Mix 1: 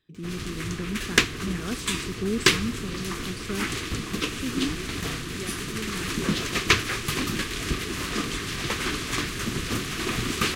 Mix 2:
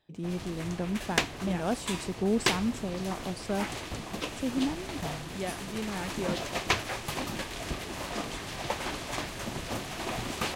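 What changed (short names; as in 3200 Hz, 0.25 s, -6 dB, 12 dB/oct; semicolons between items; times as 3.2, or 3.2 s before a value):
background -8.0 dB; master: add band shelf 710 Hz +15 dB 1 oct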